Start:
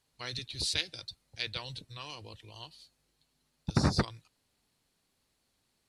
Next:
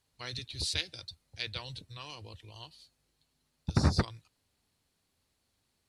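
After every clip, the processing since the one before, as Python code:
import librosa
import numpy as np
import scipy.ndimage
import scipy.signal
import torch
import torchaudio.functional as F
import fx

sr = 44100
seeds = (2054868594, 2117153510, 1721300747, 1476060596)

y = fx.peak_eq(x, sr, hz=81.0, db=8.0, octaves=0.63)
y = F.gain(torch.from_numpy(y), -1.5).numpy()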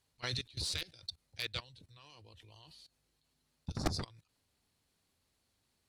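y = fx.cheby_harmonics(x, sr, harmonics=(4,), levels_db=(-18,), full_scale_db=-12.0)
y = fx.level_steps(y, sr, step_db=21)
y = 10.0 ** (-27.5 / 20.0) * (np.abs((y / 10.0 ** (-27.5 / 20.0) + 3.0) % 4.0 - 2.0) - 1.0)
y = F.gain(torch.from_numpy(y), 5.0).numpy()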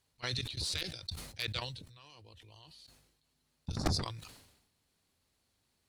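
y = fx.sustainer(x, sr, db_per_s=61.0)
y = F.gain(torch.from_numpy(y), 1.0).numpy()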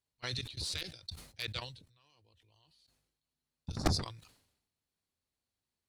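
y = fx.upward_expand(x, sr, threshold_db=-58.0, expansion=1.5)
y = F.gain(torch.from_numpy(y), 2.5).numpy()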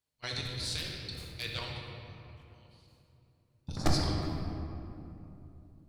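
y = fx.room_shoebox(x, sr, seeds[0], volume_m3=130.0, walls='hard', distance_m=0.48)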